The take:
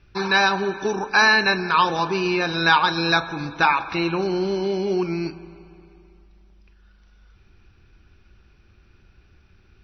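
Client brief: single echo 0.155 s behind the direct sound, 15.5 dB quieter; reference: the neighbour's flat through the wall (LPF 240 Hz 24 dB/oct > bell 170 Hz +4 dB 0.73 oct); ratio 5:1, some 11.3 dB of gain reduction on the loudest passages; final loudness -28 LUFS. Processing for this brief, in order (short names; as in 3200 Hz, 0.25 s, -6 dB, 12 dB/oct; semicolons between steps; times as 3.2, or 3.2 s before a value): compressor 5:1, threshold -25 dBFS; LPF 240 Hz 24 dB/oct; bell 170 Hz +4 dB 0.73 oct; echo 0.155 s -15.5 dB; gain +7.5 dB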